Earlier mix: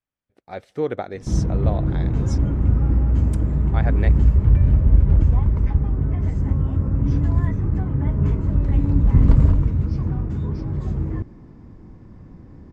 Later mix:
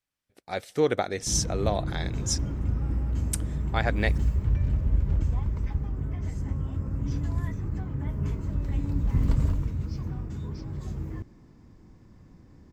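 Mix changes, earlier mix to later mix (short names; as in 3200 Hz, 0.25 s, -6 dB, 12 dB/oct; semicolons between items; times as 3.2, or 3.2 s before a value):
background -10.0 dB; master: remove LPF 1300 Hz 6 dB/oct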